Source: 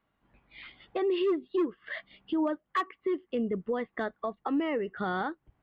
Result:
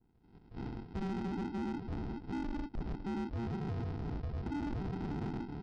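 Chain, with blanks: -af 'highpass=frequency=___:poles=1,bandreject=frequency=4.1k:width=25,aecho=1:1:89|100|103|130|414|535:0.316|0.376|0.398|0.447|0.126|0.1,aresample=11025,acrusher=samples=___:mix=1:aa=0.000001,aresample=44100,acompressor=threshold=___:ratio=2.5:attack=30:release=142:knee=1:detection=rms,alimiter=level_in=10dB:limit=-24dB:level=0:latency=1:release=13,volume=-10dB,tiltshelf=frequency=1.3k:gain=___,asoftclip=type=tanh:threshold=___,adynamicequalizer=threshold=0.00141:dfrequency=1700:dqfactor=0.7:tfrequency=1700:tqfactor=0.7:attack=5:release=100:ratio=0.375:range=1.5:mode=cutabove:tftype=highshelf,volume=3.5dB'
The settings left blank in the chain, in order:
350, 19, -43dB, 5.5, -37dB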